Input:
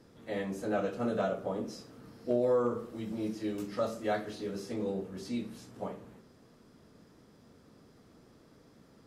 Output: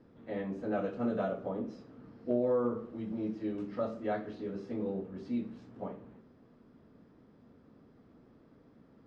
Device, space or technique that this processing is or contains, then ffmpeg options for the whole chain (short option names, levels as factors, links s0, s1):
phone in a pocket: -filter_complex "[0:a]asettb=1/sr,asplit=3[s0][s1][s2];[s0]atrim=end=0.724[s3];[s1]atrim=start=0.72:end=1.49,asetpts=PTS-STARTPTS,afade=t=in:d=0.004:c=qsin,afade=t=out:st=0.766:d=0.004:c=qsin,highshelf=f=4000:g=6[s4];[s2]atrim=start=1.486[s5];[s3][s4]acrossfade=d=0.004:c1=hsin:c2=qsin[s6];[s6][s5]acrossfade=d=0.004:c1=qsin:c2=hsin,lowpass=3700,equalizer=f=250:t=o:w=0.52:g=4,highshelf=f=2500:g=-9,volume=0.794"